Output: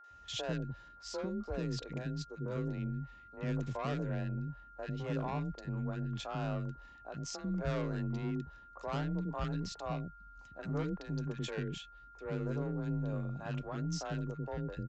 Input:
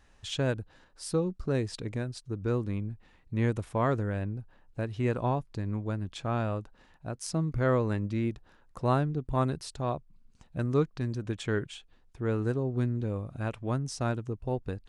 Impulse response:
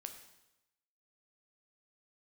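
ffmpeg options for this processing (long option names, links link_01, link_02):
-filter_complex "[0:a]aresample=16000,asoftclip=type=tanh:threshold=-28dB,aresample=44100,afreqshift=27,acrossover=split=390|1400[link_01][link_02][link_03];[link_03]adelay=40[link_04];[link_01]adelay=100[link_05];[link_05][link_02][link_04]amix=inputs=3:normalize=0,aeval=exprs='val(0)+0.00251*sin(2*PI*1400*n/s)':channel_layout=same,volume=-2dB"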